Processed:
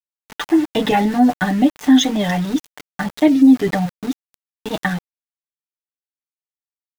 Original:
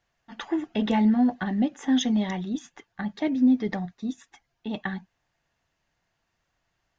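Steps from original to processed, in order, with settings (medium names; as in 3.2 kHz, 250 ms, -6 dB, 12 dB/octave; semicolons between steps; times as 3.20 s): comb 6.7 ms, depth 78%; small samples zeroed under -36.5 dBFS; warped record 45 rpm, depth 100 cents; trim +9 dB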